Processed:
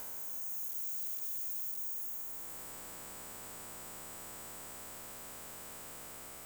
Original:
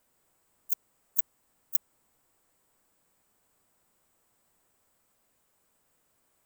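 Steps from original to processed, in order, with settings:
spectrum smeared in time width 825 ms
sine wavefolder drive 15 dB, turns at −32.5 dBFS
downward compressor 2.5 to 1, threshold −49 dBFS, peak gain reduction 9.5 dB
level +7.5 dB

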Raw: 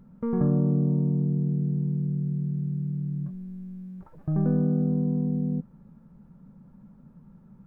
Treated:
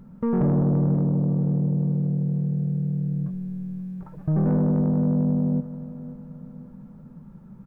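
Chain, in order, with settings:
soft clipping −22 dBFS, distortion −14 dB
repeating echo 532 ms, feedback 42%, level −15 dB
level +6 dB

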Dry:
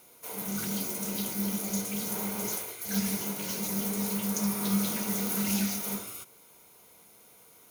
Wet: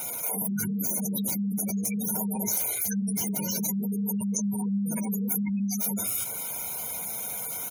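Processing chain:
gate on every frequency bin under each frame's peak −15 dB strong
high-shelf EQ 3,500 Hz +7 dB
comb filter 1.3 ms, depth 50%
dynamic equaliser 1,200 Hz, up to −4 dB, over −50 dBFS, Q 0.72
envelope flattener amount 70%
level −2 dB

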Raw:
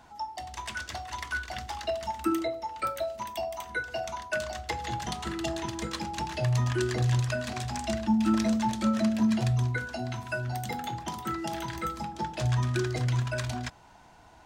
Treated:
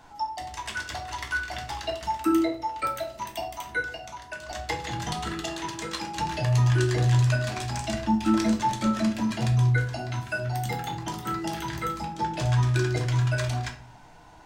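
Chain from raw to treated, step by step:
0:03.89–0:04.49: downward compressor 6 to 1, threshold −38 dBFS, peak gain reduction 12 dB
0:05.40–0:06.15: low-shelf EQ 210 Hz −11.5 dB
rectangular room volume 39 cubic metres, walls mixed, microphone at 0.41 metres
level +1.5 dB

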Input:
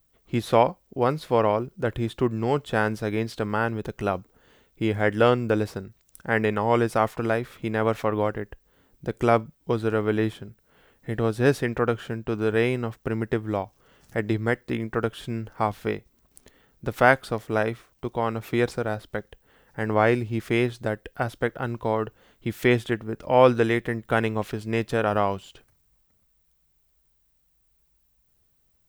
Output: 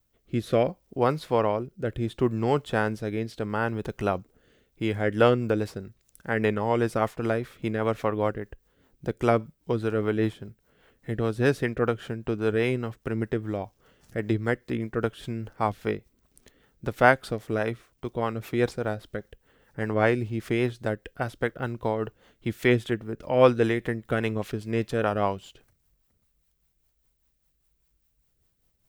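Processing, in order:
rotating-speaker cabinet horn 0.7 Hz, later 5 Hz, at 0:04.52

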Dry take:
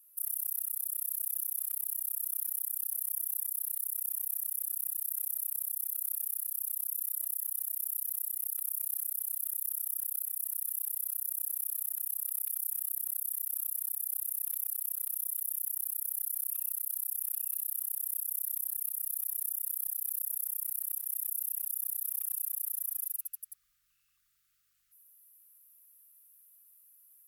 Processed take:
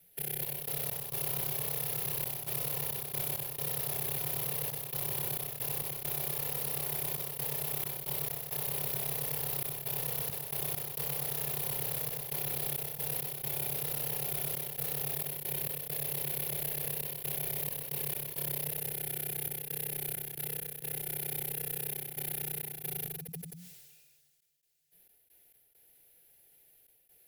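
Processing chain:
lower of the sound and its delayed copy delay 3.1 ms
phaser with its sweep stopped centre 350 Hz, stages 6
delay with pitch and tempo change per echo 255 ms, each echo +4 semitones, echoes 3
frequency shifter −180 Hz
gate pattern "xx.x.xxxxx." 67 BPM −24 dB
level that may fall only so fast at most 32 dB per second

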